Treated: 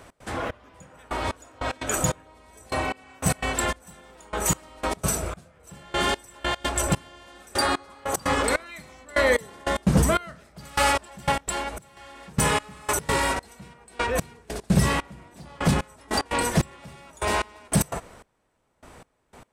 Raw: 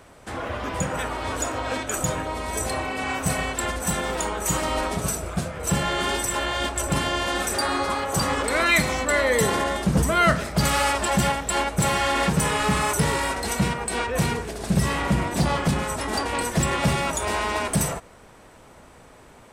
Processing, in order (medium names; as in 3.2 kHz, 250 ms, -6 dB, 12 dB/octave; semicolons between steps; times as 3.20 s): 11.40–11.97 s: compression 10:1, threshold -27 dBFS, peak gain reduction 10 dB; trance gate "x.xxx......xx..." 149 bpm -24 dB; trim +1.5 dB